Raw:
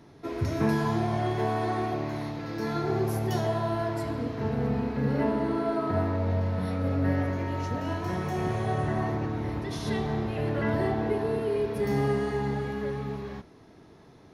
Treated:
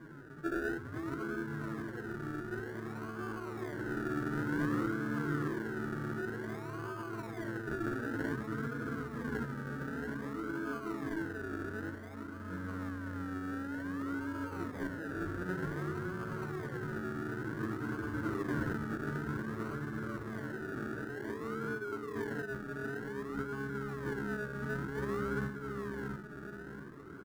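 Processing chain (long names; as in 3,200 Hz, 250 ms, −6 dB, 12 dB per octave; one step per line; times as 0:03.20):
slap from a distant wall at 52 metres, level −21 dB
soft clipping −20 dBFS, distortion −19 dB
phase-vocoder stretch with locked phases 1.9×
compressor whose output falls as the input rises −36 dBFS, ratio −1
parametric band 150 Hz +8.5 dB 0.29 octaves
mains-hum notches 50/100/150/200/250/300/350 Hz
double-tracking delay 40 ms −10.5 dB
feedback echo with a low-pass in the loop 674 ms, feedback 42%, low-pass 1,100 Hz, level −4 dB
sample-and-hold swept by an LFO 33×, swing 60% 0.54 Hz
drawn EQ curve 130 Hz 0 dB, 350 Hz +8 dB, 750 Hz −7 dB, 1,500 Hz +14 dB, 2,400 Hz −8 dB
level −8 dB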